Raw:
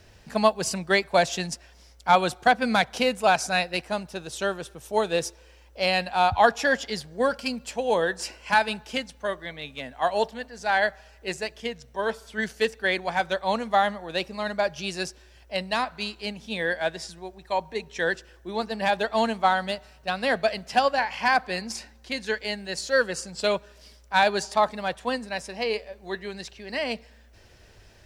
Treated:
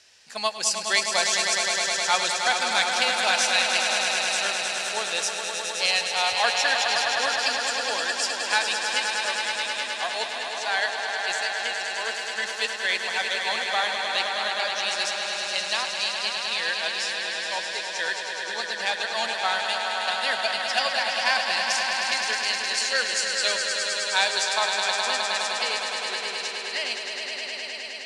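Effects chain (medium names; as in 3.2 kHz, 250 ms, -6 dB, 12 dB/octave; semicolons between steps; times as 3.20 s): frequency weighting ITU-R 468; echo with a slow build-up 104 ms, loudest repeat 5, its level -7 dB; trim -5.5 dB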